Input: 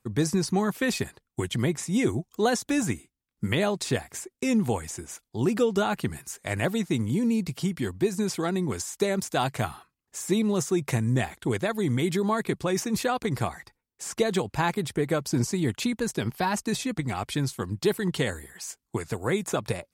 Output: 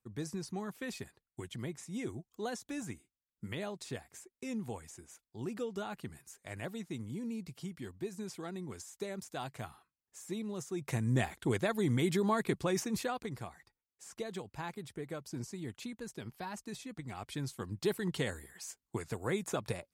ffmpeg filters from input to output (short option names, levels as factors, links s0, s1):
-af "volume=1.41,afade=t=in:st=10.7:d=0.49:silence=0.316228,afade=t=out:st=12.6:d=0.82:silence=0.281838,afade=t=in:st=16.91:d=1.03:silence=0.398107"